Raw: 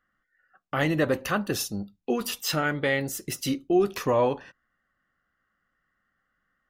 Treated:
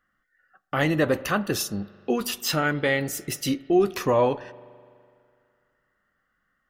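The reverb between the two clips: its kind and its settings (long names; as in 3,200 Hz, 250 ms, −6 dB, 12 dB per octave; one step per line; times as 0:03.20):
spring reverb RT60 2.3 s, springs 41 ms, chirp 35 ms, DRR 19.5 dB
level +2 dB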